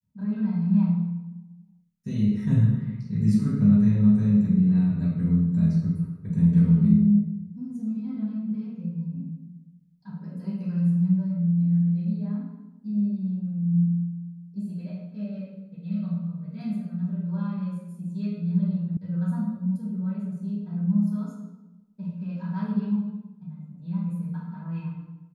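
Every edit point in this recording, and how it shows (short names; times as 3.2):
18.97 sound cut off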